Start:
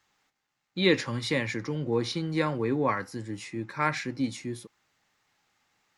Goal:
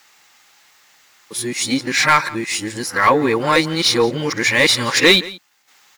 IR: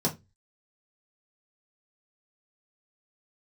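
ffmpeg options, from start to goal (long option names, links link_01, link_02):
-filter_complex "[0:a]areverse,aemphasis=mode=production:type=75fm,asplit=2[link_01][link_02];[link_02]highpass=frequency=720:poles=1,volume=15dB,asoftclip=type=tanh:threshold=-8.5dB[link_03];[link_01][link_03]amix=inputs=2:normalize=0,lowpass=frequency=3800:poles=1,volume=-6dB,aecho=1:1:171:0.1,volume=8dB" -ar 44100 -c:a adpcm_ima_wav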